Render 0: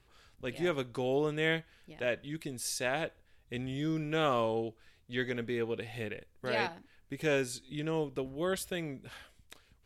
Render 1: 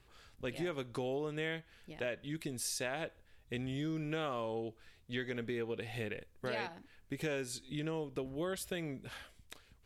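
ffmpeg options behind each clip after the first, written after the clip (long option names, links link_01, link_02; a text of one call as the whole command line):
ffmpeg -i in.wav -af "acompressor=threshold=-36dB:ratio=5,volume=1dB" out.wav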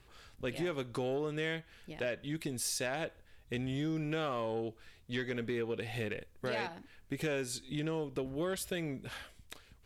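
ffmpeg -i in.wav -af "asoftclip=type=tanh:threshold=-29dB,volume=3.5dB" out.wav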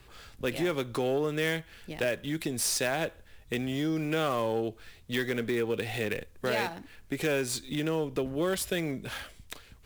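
ffmpeg -i in.wav -filter_complex "[0:a]acrossover=split=200|1100[link_01][link_02][link_03];[link_01]alimiter=level_in=19dB:limit=-24dB:level=0:latency=1,volume=-19dB[link_04];[link_03]acrusher=bits=2:mode=log:mix=0:aa=0.000001[link_05];[link_04][link_02][link_05]amix=inputs=3:normalize=0,volume=6.5dB" out.wav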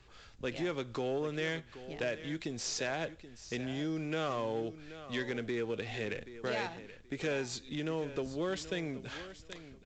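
ffmpeg -i in.wav -af "aecho=1:1:778|1556:0.2|0.0439,volume=-6dB" -ar 16000 -c:a pcm_mulaw out.wav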